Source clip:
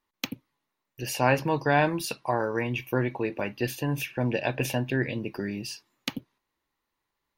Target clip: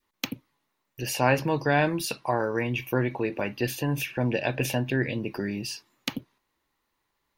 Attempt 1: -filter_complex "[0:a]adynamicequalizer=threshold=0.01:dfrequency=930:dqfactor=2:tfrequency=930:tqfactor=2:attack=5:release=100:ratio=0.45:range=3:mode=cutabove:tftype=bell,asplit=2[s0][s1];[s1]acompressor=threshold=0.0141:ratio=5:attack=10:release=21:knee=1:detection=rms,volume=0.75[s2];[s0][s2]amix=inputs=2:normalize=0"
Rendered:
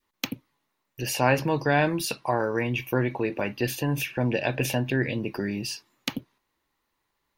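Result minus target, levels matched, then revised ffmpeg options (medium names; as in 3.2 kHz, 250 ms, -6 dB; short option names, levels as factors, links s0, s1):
compression: peak gain reduction -5.5 dB
-filter_complex "[0:a]adynamicequalizer=threshold=0.01:dfrequency=930:dqfactor=2:tfrequency=930:tqfactor=2:attack=5:release=100:ratio=0.45:range=3:mode=cutabove:tftype=bell,asplit=2[s0][s1];[s1]acompressor=threshold=0.00631:ratio=5:attack=10:release=21:knee=1:detection=rms,volume=0.75[s2];[s0][s2]amix=inputs=2:normalize=0"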